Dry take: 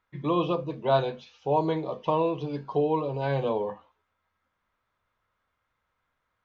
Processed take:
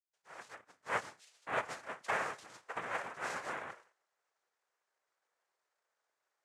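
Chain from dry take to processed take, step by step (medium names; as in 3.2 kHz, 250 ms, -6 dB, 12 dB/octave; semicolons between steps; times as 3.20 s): fade-in on the opening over 1.95 s; Chebyshev high-pass 650 Hz, order 4; noise-vocoded speech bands 3; trim -6 dB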